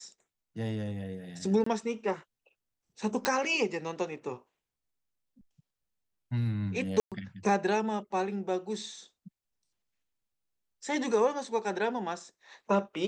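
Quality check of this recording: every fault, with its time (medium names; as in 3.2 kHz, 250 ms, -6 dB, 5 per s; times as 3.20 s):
1.64–1.66 s: dropout 24 ms
3.25 s: pop -11 dBFS
7.00–7.12 s: dropout 117 ms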